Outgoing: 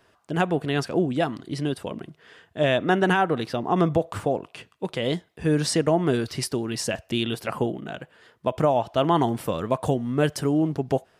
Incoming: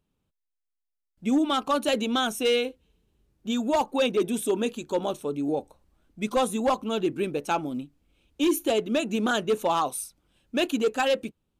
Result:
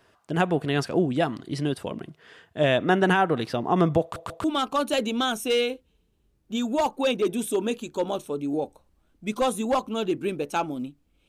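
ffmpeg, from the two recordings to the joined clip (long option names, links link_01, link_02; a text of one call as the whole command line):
ffmpeg -i cue0.wav -i cue1.wav -filter_complex "[0:a]apad=whole_dur=11.28,atrim=end=11.28,asplit=3[link_01][link_02][link_03];[link_01]atrim=end=4.162[link_04];[link_02]atrim=start=4.018:end=4.162[link_05];[link_03]atrim=start=4.018:end=4.162[link_06];[1:a]atrim=start=1.388:end=8.23[link_07];[link_04][link_05]acrossfade=duration=0.004:curve1=hsin:curve2=hsin[link_08];[link_08][link_06]acrossfade=duration=0.004:curve1=hsin:curve2=hsin[link_09];[link_09][link_07]acrossfade=duration=0.004:curve1=hsin:curve2=hsin" out.wav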